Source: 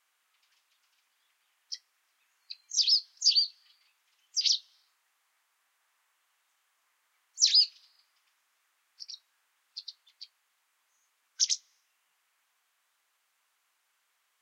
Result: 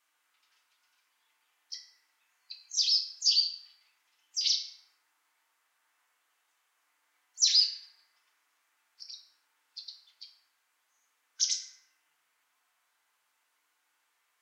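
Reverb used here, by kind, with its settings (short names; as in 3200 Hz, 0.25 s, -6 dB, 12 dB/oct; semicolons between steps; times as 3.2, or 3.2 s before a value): FDN reverb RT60 1.7 s, low-frequency decay 1.1×, high-frequency decay 0.3×, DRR -1 dB; gain -3 dB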